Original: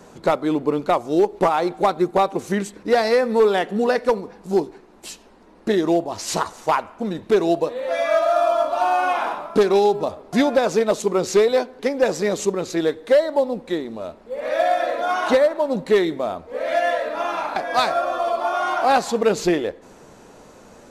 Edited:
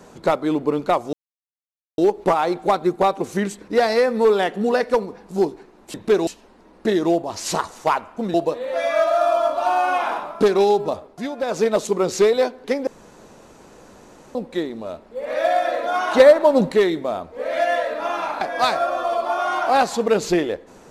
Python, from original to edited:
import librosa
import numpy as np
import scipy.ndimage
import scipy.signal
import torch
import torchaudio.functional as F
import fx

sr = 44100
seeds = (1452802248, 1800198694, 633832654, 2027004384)

y = fx.edit(x, sr, fx.insert_silence(at_s=1.13, length_s=0.85),
    fx.move(start_s=7.16, length_s=0.33, to_s=5.09),
    fx.fade_down_up(start_s=10.09, length_s=0.7, db=-10.5, fade_s=0.27),
    fx.room_tone_fill(start_s=12.02, length_s=1.48),
    fx.clip_gain(start_s=15.35, length_s=0.52, db=6.5), tone=tone)